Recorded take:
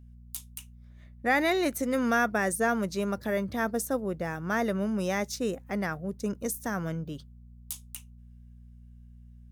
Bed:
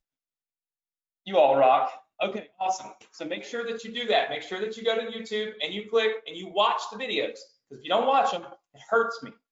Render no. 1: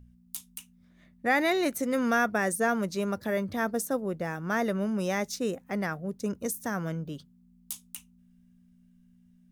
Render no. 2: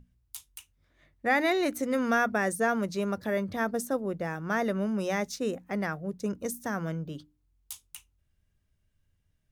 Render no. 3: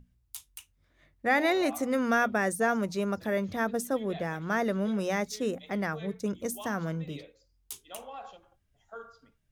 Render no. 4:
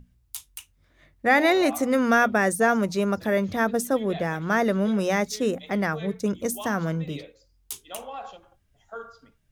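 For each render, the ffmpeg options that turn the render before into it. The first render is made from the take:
-af "bandreject=f=60:t=h:w=4,bandreject=f=120:t=h:w=4"
-af "highshelf=f=6900:g=-5.5,bandreject=f=60:t=h:w=6,bandreject=f=120:t=h:w=6,bandreject=f=180:t=h:w=6,bandreject=f=240:t=h:w=6,bandreject=f=300:t=h:w=6"
-filter_complex "[1:a]volume=0.0841[s0];[0:a][s0]amix=inputs=2:normalize=0"
-af "volume=2"

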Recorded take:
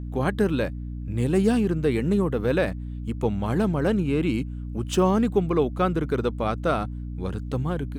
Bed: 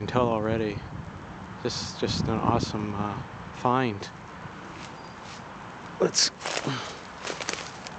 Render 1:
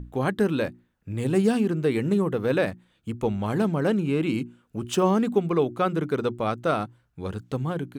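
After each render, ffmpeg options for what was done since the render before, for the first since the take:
-af "bandreject=f=60:t=h:w=6,bandreject=f=120:t=h:w=6,bandreject=f=180:t=h:w=6,bandreject=f=240:t=h:w=6,bandreject=f=300:t=h:w=6,bandreject=f=360:t=h:w=6"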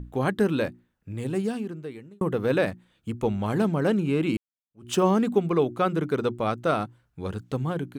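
-filter_complex "[0:a]asplit=3[s0][s1][s2];[s0]atrim=end=2.21,asetpts=PTS-STARTPTS,afade=t=out:st=0.62:d=1.59[s3];[s1]atrim=start=2.21:end=4.37,asetpts=PTS-STARTPTS,afade=t=in:d=0.004:c=hsin,afade=t=out:st=2.156:d=0.004:c=hsin[s4];[s2]atrim=start=4.37,asetpts=PTS-STARTPTS,afade=t=in:d=0.53:c=exp[s5];[s3][s4][s5]concat=n=3:v=0:a=1"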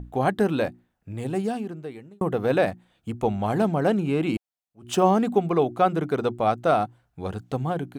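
-af "equalizer=f=730:t=o:w=0.44:g=10"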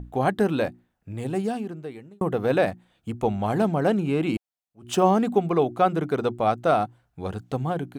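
-af anull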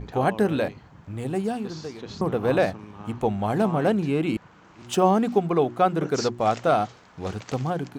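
-filter_complex "[1:a]volume=0.266[s0];[0:a][s0]amix=inputs=2:normalize=0"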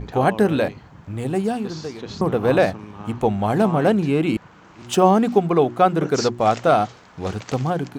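-af "volume=1.68"

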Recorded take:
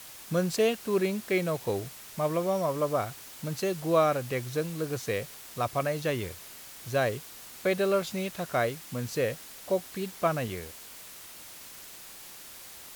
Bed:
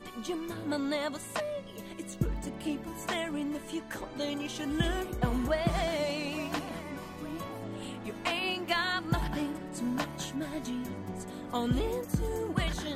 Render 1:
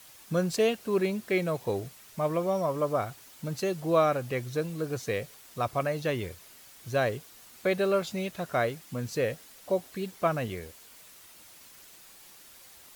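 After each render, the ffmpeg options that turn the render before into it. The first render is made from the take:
-af "afftdn=nr=7:nf=-47"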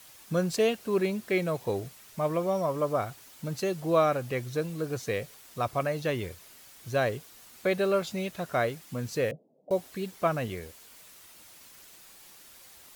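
-filter_complex "[0:a]asettb=1/sr,asplit=3[s0][s1][s2];[s0]atrim=end=9.314[s3];[s1]atrim=start=9.31:end=9.71,asetpts=PTS-STARTPTS,afade=t=in:d=0.004:c=qsin,afade=t=out:st=0.396:d=0.004:c=qsin,asuperpass=centerf=300:order=12:qfactor=0.54[s4];[s2]atrim=start=9.706[s5];[s3][s4]acrossfade=d=0.004:c1=hsin:c2=qsin[s6];[s6][s5]acrossfade=d=0.004:c1=qsin:c2=hsin"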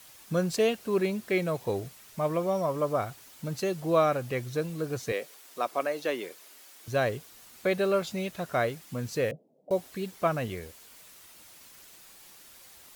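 -filter_complex "[0:a]asettb=1/sr,asplit=3[s0][s1][s2];[s0]atrim=end=5.124[s3];[s1]atrim=start=5.12:end=6.88,asetpts=PTS-STARTPTS,afade=t=in:d=0.004:c=qsin,afade=t=out:st=1.756:d=0.004:c=qsin,highpass=f=260:w=0.5412,highpass=f=260:w=1.3066[s4];[s2]atrim=start=6.876[s5];[s3][s4]acrossfade=d=0.004:c1=hsin:c2=qsin[s6];[s6][s5]acrossfade=d=0.004:c1=qsin:c2=hsin"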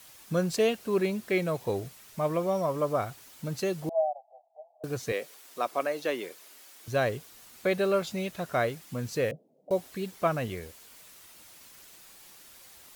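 -filter_complex "[0:a]asettb=1/sr,asplit=3[s0][s1][s2];[s0]atrim=end=3.894[s3];[s1]atrim=start=3.89:end=4.84,asetpts=PTS-STARTPTS,afade=t=in:d=0.004:c=qsin,afade=t=out:st=0.946:d=0.004:c=qsin,asuperpass=centerf=720:order=8:qfactor=3.4[s4];[s2]atrim=start=4.836[s5];[s3][s4]acrossfade=d=0.004:c1=hsin:c2=qsin[s6];[s6][s5]acrossfade=d=0.004:c1=qsin:c2=hsin"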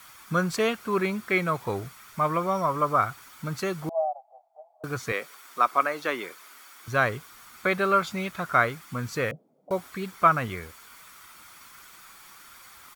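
-af "equalizer=f=1400:w=1.3:g=13,aecho=1:1:0.9:0.33"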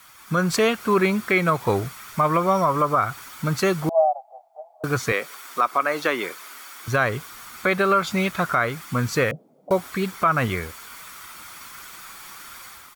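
-af "alimiter=limit=0.126:level=0:latency=1:release=170,dynaudnorm=f=130:g=5:m=2.66"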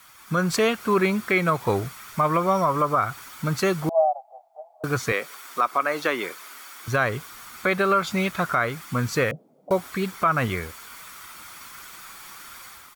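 -af "volume=0.841"

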